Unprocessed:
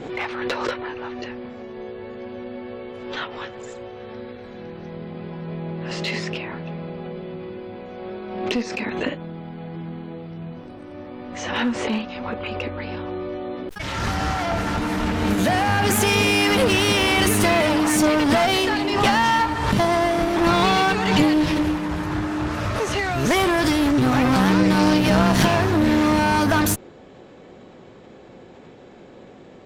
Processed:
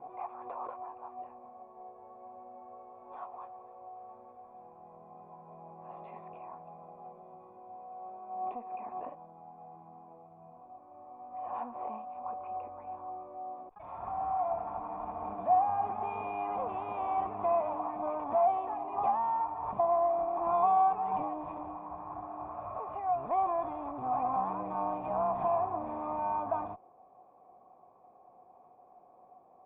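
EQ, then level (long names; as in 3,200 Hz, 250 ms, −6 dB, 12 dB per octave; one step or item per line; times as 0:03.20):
formant resonators in series a
0.0 dB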